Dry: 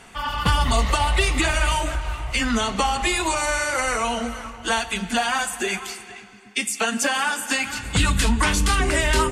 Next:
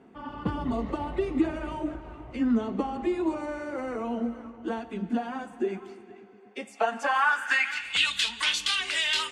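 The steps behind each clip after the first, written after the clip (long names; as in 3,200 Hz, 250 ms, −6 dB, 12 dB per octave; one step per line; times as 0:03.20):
band-pass filter sweep 300 Hz → 3,400 Hz, 0:06.11–0:08.14
level +4 dB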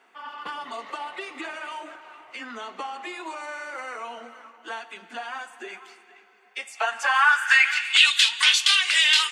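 high-pass filter 1,300 Hz 12 dB per octave
level +8.5 dB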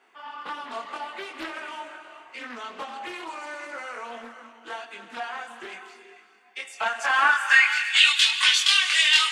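reverb whose tail is shaped and stops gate 480 ms flat, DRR 9 dB
multi-voice chorus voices 4, 0.24 Hz, delay 23 ms, depth 2.5 ms
highs frequency-modulated by the lows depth 0.4 ms
level +2 dB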